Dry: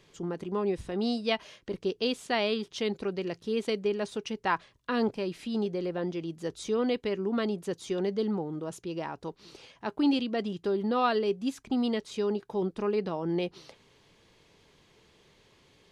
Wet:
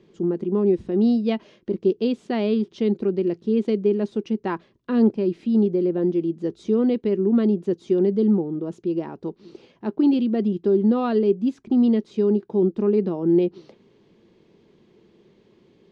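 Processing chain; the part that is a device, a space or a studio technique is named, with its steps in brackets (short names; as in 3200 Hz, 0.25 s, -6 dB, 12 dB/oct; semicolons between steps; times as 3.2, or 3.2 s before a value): inside a cardboard box (LPF 5400 Hz 12 dB/oct; small resonant body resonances 220/340 Hz, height 18 dB, ringing for 35 ms); gain -5.5 dB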